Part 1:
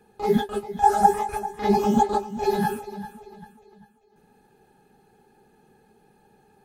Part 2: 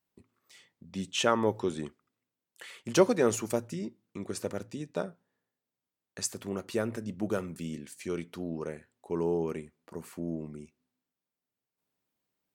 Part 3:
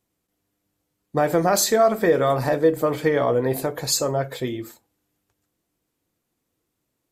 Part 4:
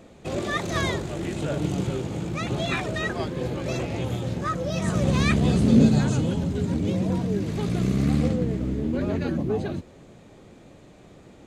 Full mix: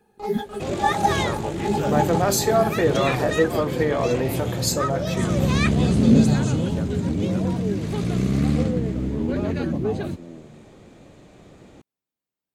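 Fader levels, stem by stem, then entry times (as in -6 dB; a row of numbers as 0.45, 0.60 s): -4.0, -6.0, -2.5, +1.5 dB; 0.00, 0.00, 0.75, 0.35 s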